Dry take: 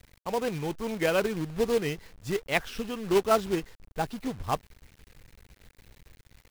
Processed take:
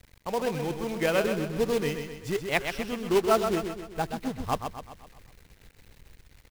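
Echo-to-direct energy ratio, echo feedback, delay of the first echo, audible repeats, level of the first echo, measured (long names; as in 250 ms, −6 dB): −6.0 dB, 50%, 128 ms, 5, −7.0 dB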